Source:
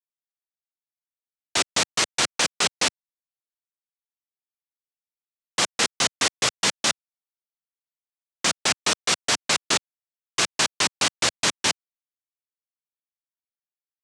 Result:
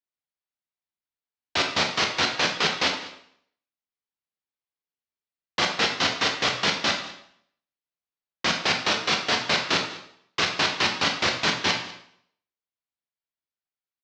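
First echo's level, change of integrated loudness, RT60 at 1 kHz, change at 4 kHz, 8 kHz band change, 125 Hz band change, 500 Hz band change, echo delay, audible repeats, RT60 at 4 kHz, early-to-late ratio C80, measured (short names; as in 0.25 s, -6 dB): -19.0 dB, -1.0 dB, 0.65 s, 0.0 dB, -10.5 dB, +2.5 dB, +1.5 dB, 0.197 s, 1, 0.65 s, 9.5 dB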